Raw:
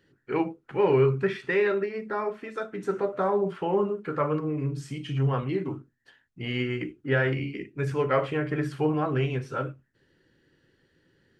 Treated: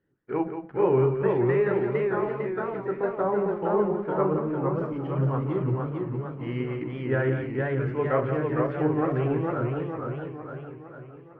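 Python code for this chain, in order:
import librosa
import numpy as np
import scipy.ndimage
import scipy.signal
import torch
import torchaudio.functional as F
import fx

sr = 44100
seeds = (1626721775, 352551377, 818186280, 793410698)

y = fx.law_mismatch(x, sr, coded='A')
y = scipy.signal.sosfilt(scipy.signal.butter(2, 1400.0, 'lowpass', fs=sr, output='sos'), y)
y = y + 10.0 ** (-8.5 / 20.0) * np.pad(y, (int(176 * sr / 1000.0), 0))[:len(y)]
y = fx.echo_warbled(y, sr, ms=457, feedback_pct=53, rate_hz=2.8, cents=156, wet_db=-3.0)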